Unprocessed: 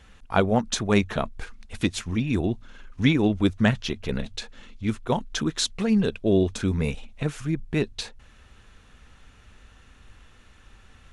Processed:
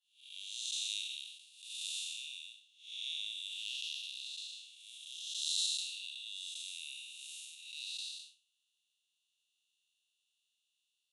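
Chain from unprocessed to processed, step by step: spectral blur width 338 ms; rippled Chebyshev high-pass 2.7 kHz, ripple 6 dB; expander -55 dBFS; trim +7 dB

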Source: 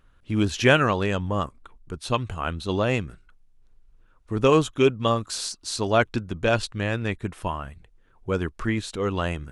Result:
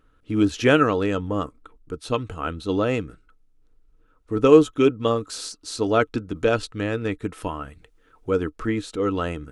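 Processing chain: small resonant body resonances 300/450/1300 Hz, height 12 dB, ringing for 60 ms; 6.35–8.40 s: tape noise reduction on one side only encoder only; trim -3 dB

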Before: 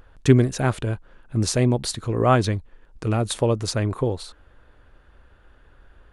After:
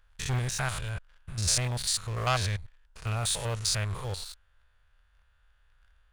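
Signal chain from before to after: spectrogram pixelated in time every 100 ms; waveshaping leveller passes 2; amplifier tone stack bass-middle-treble 10-0-10; trim -1 dB

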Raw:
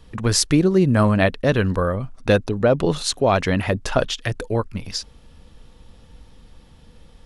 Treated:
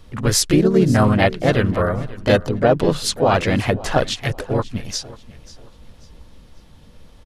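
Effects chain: harmony voices -4 st -12 dB, +3 st -4 dB; feedback delay 540 ms, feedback 32%, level -19 dB

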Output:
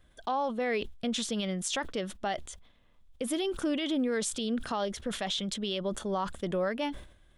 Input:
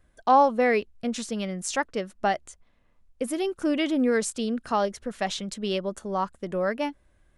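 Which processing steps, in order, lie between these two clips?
peaking EQ 3.4 kHz +11 dB 0.37 oct; compression 3:1, threshold -26 dBFS, peak gain reduction 9.5 dB; peak limiter -22.5 dBFS, peak gain reduction 8.5 dB; decay stretcher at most 100 dB/s

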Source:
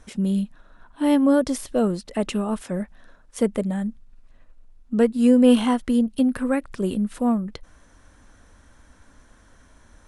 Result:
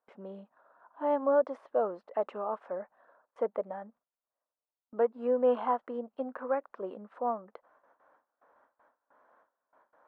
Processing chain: Butterworth band-pass 810 Hz, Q 1.1; gate with hold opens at -53 dBFS; trim -1.5 dB

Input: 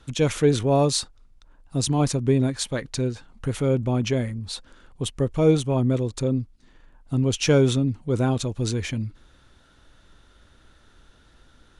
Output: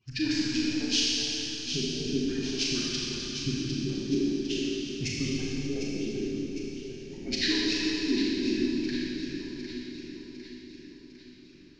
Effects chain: harmonic-percussive separation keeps percussive; LFO low-pass square 0.45 Hz 530–7500 Hz; echo whose repeats swap between lows and highs 377 ms, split 2.3 kHz, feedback 72%, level -5 dB; formant shift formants -6 st; high-order bell 780 Hz -12.5 dB; Schroeder reverb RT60 3 s, combs from 28 ms, DRR -5 dB; trim -7 dB

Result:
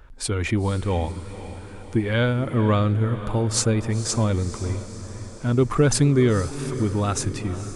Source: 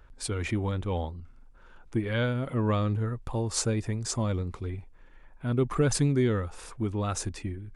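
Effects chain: echo that smears into a reverb 490 ms, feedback 59%, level -13 dB; trim +6.5 dB

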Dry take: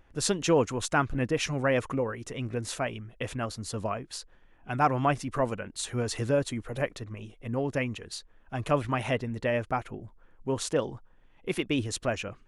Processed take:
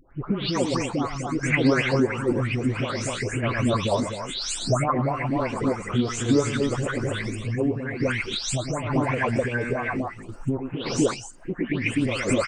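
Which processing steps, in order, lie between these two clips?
delay that grows with frequency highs late, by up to 372 ms; recorder AGC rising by 15 dB/s; formant shift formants -3 st; loudspeakers at several distances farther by 37 m -10 dB, 86 m -4 dB; compression 5:1, threshold -26 dBFS, peak gain reduction 8 dB; random-step tremolo; sweeping bell 3 Hz 250–3000 Hz +12 dB; trim +5 dB

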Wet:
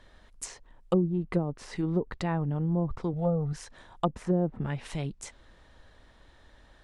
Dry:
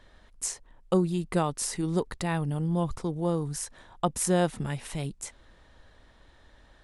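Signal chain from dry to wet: low-pass that closes with the level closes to 430 Hz, closed at -21 dBFS; 3.13–3.53 s: comb 1.5 ms, depth 79%

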